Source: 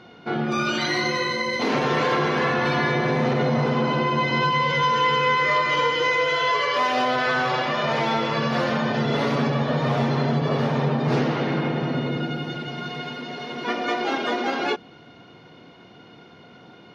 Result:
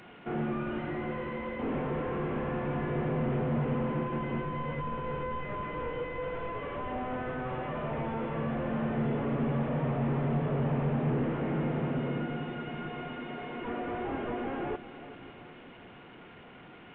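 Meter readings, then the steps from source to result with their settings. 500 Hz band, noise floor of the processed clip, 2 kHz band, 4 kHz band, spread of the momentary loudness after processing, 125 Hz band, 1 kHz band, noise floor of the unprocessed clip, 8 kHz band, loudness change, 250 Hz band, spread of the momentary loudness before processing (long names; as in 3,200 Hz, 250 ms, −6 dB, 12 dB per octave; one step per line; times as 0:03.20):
−10.0 dB, −51 dBFS, −17.5 dB, −23.5 dB, 16 LU, −6.5 dB, −14.0 dB, −48 dBFS, can't be measured, −10.5 dB, −6.5 dB, 8 LU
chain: linear delta modulator 16 kbit/s, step −39 dBFS
echo with a time of its own for lows and highs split 360 Hz, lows 556 ms, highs 387 ms, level −14 dB
level −6 dB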